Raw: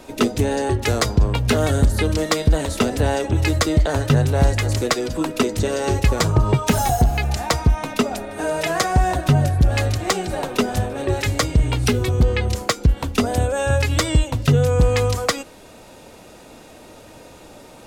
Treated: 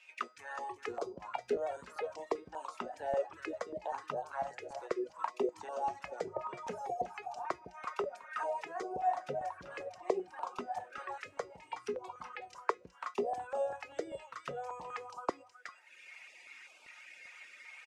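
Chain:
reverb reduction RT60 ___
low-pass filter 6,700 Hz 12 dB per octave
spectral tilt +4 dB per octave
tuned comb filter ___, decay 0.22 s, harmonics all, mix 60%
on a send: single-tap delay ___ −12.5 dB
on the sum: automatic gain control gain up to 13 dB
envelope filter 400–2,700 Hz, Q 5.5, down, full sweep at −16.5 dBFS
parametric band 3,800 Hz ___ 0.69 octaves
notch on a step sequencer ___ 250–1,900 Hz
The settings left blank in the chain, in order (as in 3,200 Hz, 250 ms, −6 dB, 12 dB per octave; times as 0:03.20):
1.2 s, 180 Hz, 369 ms, −8.5 dB, 5.1 Hz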